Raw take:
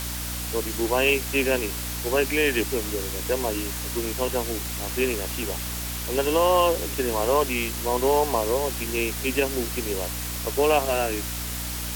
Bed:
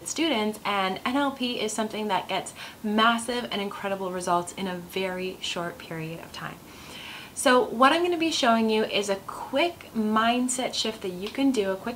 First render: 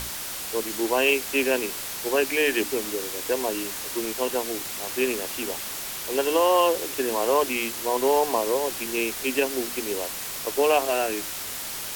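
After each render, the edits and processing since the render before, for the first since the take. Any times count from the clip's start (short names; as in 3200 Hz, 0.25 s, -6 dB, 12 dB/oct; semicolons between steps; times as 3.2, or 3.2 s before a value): notches 60/120/180/240/300 Hz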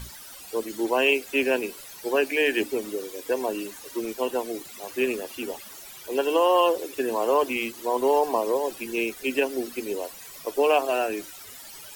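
denoiser 15 dB, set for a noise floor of -34 dBFS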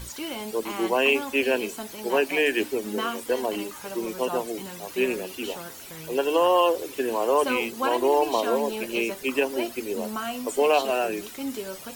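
add bed -9 dB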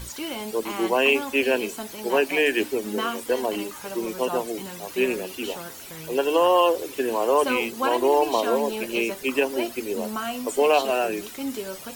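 gain +1.5 dB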